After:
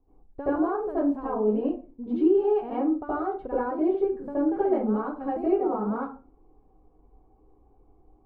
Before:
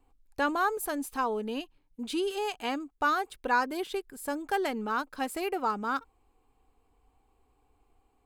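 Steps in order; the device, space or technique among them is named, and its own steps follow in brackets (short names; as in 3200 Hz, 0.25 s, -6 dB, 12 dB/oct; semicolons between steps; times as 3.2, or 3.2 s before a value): television next door (compressor, threshold -30 dBFS, peak gain reduction 9 dB; LPF 600 Hz 12 dB/oct; reverb RT60 0.35 s, pre-delay 70 ms, DRR -10.5 dB)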